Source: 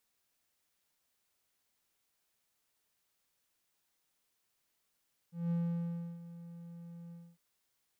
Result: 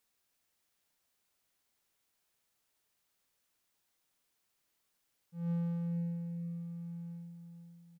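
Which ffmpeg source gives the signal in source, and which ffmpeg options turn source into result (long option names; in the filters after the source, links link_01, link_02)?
-f lavfi -i "aevalsrc='0.0422*(1-4*abs(mod(170*t+0.25,1)-0.5))':duration=2.053:sample_rate=44100,afade=type=in:duration=0.188,afade=type=out:start_time=0.188:duration=0.677:silence=0.15,afade=type=out:start_time=1.8:duration=0.253"
-filter_complex "[0:a]asplit=2[link_01][link_02];[link_02]adelay=476,lowpass=frequency=2000:poles=1,volume=-7.5dB,asplit=2[link_03][link_04];[link_04]adelay=476,lowpass=frequency=2000:poles=1,volume=0.4,asplit=2[link_05][link_06];[link_06]adelay=476,lowpass=frequency=2000:poles=1,volume=0.4,asplit=2[link_07][link_08];[link_08]adelay=476,lowpass=frequency=2000:poles=1,volume=0.4,asplit=2[link_09][link_10];[link_10]adelay=476,lowpass=frequency=2000:poles=1,volume=0.4[link_11];[link_03][link_05][link_07][link_09][link_11]amix=inputs=5:normalize=0[link_12];[link_01][link_12]amix=inputs=2:normalize=0"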